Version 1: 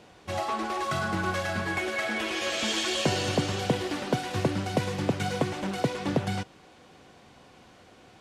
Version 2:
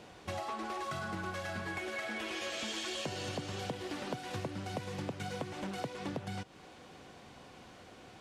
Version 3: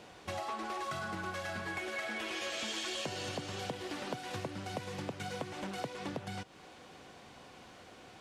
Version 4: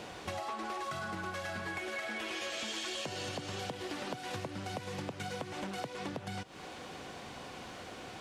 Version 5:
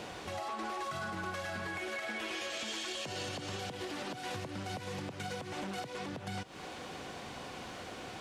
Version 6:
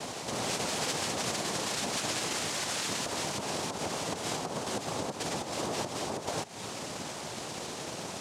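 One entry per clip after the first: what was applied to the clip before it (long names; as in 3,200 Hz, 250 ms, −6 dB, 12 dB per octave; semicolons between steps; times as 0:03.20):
downward compressor 5 to 1, threshold −37 dBFS, peak gain reduction 15.5 dB
low-shelf EQ 350 Hz −4 dB; level +1 dB
downward compressor 2.5 to 1, threshold −48 dBFS, peak gain reduction 10.5 dB; level +8 dB
brickwall limiter −31 dBFS, peak gain reduction 8 dB; level +1.5 dB
cochlear-implant simulation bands 2; level +6 dB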